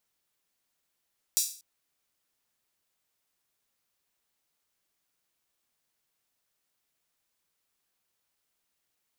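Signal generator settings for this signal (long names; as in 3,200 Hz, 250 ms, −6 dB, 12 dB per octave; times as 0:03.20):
open synth hi-hat length 0.24 s, high-pass 5,600 Hz, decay 0.42 s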